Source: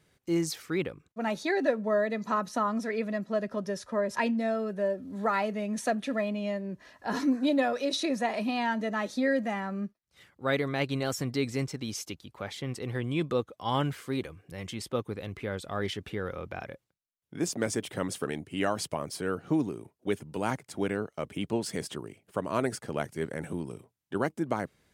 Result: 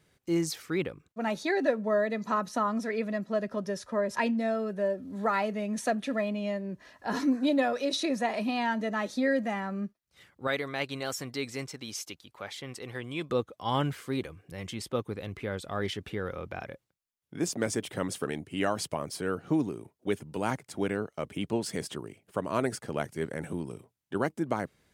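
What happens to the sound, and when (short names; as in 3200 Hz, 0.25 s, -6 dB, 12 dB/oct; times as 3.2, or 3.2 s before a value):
10.47–13.3 low shelf 370 Hz -10.5 dB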